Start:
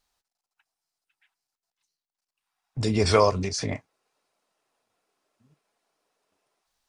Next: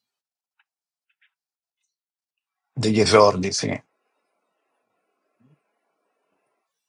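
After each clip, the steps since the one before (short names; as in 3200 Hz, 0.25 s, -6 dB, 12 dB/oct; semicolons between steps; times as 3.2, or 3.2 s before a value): HPF 120 Hz 24 dB/oct; spectral noise reduction 15 dB; gain +5.5 dB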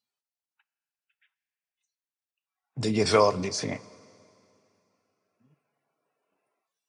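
Schroeder reverb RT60 2.6 s, DRR 20 dB; gain -6.5 dB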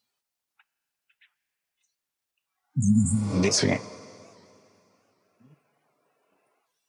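spectral repair 2.7–3.36, 270–6800 Hz both; record warp 78 rpm, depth 160 cents; gain +8.5 dB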